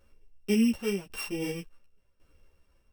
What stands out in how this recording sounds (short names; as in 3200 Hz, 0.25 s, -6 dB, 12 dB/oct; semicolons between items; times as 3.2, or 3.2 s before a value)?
a buzz of ramps at a fixed pitch in blocks of 16 samples; tremolo saw down 0.91 Hz, depth 80%; a shimmering, thickened sound